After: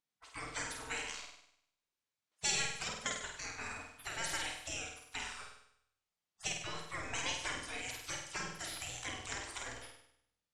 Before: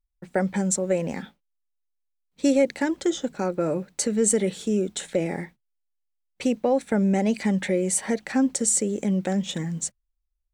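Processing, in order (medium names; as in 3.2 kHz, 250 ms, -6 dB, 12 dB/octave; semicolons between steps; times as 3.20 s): low-pass 6.8 kHz 12 dB/octave; peaking EQ 93 Hz +8 dB 0.27 oct; spectral gate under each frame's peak -30 dB weak; flutter echo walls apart 8.5 m, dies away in 0.71 s; simulated room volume 450 m³, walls furnished, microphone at 0.38 m; trim +5 dB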